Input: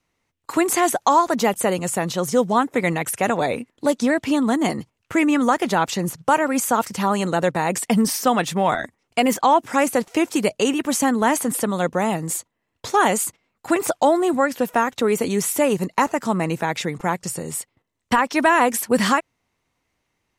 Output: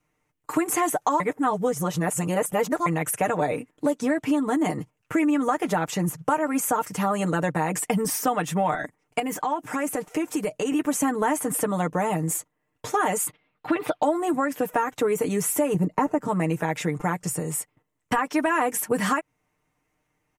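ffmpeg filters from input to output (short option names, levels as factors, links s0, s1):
-filter_complex "[0:a]asettb=1/sr,asplit=3[s0][s1][s2];[s0]atrim=end=9.194[s3];[s1]atrim=start=9.19:end=10.72,asetpts=PTS-STARTPTS,afade=t=in:d=0.004:c=qsin,afade=t=out:st=1.526:d=0.004:c=qsin,acompressor=threshold=0.0631:ratio=3:attack=3.2:release=140:knee=1:detection=peak[s4];[s2]atrim=start=10.716[s5];[s3][s4]acrossfade=d=0.004:c1=hsin:c2=qsin[s6];[s6][s5]acrossfade=d=0.004:c1=qsin:c2=hsin,asettb=1/sr,asplit=3[s7][s8][s9];[s7]atrim=end=13.274[s10];[s8]atrim=start=13.27:end=14.03,asetpts=PTS-STARTPTS,afade=t=in:d=0.004:c=qsin,afade=t=out:st=0.756:d=0.004:c=qsin,highshelf=f=5200:t=q:w=3:g=-12[s11];[s9]atrim=start=14.026[s12];[s10][s11]acrossfade=d=0.004:c1=hsin:c2=qsin[s13];[s13][s12]acrossfade=d=0.004:c1=qsin:c2=hsin,asettb=1/sr,asplit=3[s14][s15][s16];[s14]atrim=end=15.744[s17];[s15]atrim=start=15.74:end=16.28,asetpts=PTS-STARTPTS,afade=t=in:d=0.004:c=qsin,afade=t=out:st=0.536:d=0.004:c=qsin,tiltshelf=f=970:g=7[s18];[s16]atrim=start=16.276[s19];[s17][s18]acrossfade=d=0.004:c1=hsin:c2=qsin[s20];[s20][s19]acrossfade=d=0.004:c1=qsin:c2=hsin,asplit=3[s21][s22][s23];[s21]atrim=end=1.202[s24];[s22]atrim=start=1.198:end=2.862,asetpts=PTS-STARTPTS,areverse[s25];[s23]atrim=start=2.858[s26];[s24][s25]acrossfade=d=0.004:c1=hsin:c2=hsin[s27];[s27][s26]acrossfade=d=0.004:c1=hsin:c2=hsin,equalizer=f=4200:t=o:w=0.94:g=-10.5,aecho=1:1:6.6:0.69,acompressor=threshold=0.1:ratio=3,volume=0.891"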